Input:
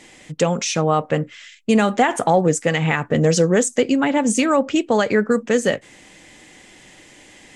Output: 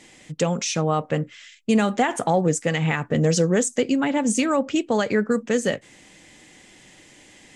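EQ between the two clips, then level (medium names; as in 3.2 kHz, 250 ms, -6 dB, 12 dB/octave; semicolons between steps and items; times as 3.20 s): peaking EQ 150 Hz +3.5 dB 2.3 oct; peaking EQ 6.2 kHz +3 dB 2.4 oct; -5.5 dB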